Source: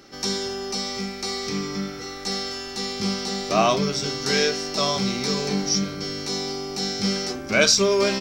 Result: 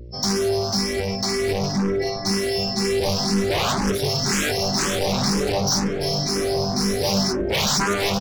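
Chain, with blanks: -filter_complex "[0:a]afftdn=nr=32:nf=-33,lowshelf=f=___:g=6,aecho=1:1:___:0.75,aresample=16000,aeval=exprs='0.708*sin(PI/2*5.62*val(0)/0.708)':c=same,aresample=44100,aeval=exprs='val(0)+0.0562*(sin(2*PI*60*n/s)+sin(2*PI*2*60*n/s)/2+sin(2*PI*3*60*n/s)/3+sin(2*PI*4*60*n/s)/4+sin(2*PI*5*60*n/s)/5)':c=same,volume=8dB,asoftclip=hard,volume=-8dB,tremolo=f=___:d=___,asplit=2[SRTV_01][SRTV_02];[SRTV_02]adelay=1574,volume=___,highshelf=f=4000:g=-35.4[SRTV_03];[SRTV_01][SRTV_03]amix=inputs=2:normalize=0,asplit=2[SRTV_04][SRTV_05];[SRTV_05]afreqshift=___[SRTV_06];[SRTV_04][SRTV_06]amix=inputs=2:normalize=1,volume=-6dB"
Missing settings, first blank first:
240, 5.5, 290, 0.75, -6dB, 2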